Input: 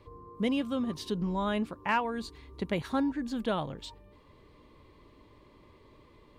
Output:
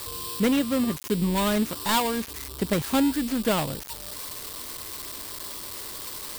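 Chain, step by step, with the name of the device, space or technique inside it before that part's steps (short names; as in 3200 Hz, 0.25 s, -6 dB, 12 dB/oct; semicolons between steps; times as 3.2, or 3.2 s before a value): budget class-D amplifier (switching dead time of 0.22 ms; switching spikes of -24.5 dBFS); gain +7 dB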